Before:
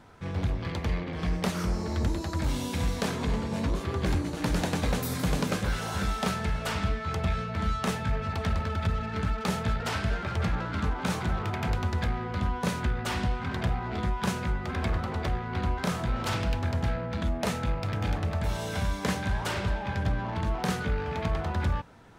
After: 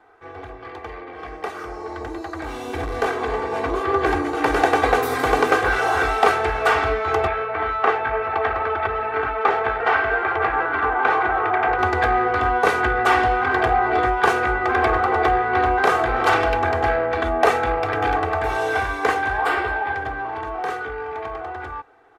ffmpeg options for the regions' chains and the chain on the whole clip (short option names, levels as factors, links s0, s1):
-filter_complex "[0:a]asettb=1/sr,asplit=3[s0][s1][s2];[s0]atrim=end=2.674[s3];[s1]atrim=start=2.67:end=3.07,asetpts=PTS-STARTPTS,afade=t=in:d=0.004:c=qsin,afade=t=out:st=0.396:d=0.004:c=qsin,lowshelf=f=230:g=10,asoftclip=type=hard:threshold=0.106[s4];[s2]atrim=start=3.066[s5];[s3][s4]acrossfade=d=0.004:c1=hsin:c2=qsin[s6];[s6][s5]acrossfade=d=0.004:c1=qsin:c2=hsin,asettb=1/sr,asplit=3[s7][s8][s9];[s7]atrim=end=7.274[s10];[s8]atrim=start=7.27:end=11.79,asetpts=PTS-STARTPTS,afade=t=in:d=0.004:c=qsin,afade=t=out:st=4.516:d=0.004:c=qsin,lowpass=2500,lowshelf=f=350:g=-8.5[s11];[s9]atrim=start=11.786[s12];[s10][s11]acrossfade=d=0.004:c1=hsin:c2=qsin[s13];[s13][s12]acrossfade=d=0.004:c1=qsin:c2=hsin,asettb=1/sr,asplit=3[s14][s15][s16];[s14]atrim=end=19.374[s17];[s15]atrim=start=19.37:end=19.94,asetpts=PTS-STARTPTS,afade=t=in:d=0.004:c=qsin,afade=t=out:st=0.566:d=0.004:c=qsin,equalizer=f=6100:t=o:w=0.2:g=-14.5,asplit=2[s18][s19];[s19]adelay=14,volume=0.631[s20];[s18][s20]amix=inputs=2:normalize=0,atrim=end_sample=25137[s21];[s16]atrim=start=19.936[s22];[s17][s21]acrossfade=d=0.004:c1=hsin:c2=qsin[s23];[s23][s22]acrossfade=d=0.004:c1=qsin:c2=hsin,acrossover=split=380 2100:gain=0.0891 1 0.141[s24][s25][s26];[s24][s25][s26]amix=inputs=3:normalize=0,aecho=1:1:2.6:0.85,dynaudnorm=f=390:g=17:m=5.31,volume=1.33"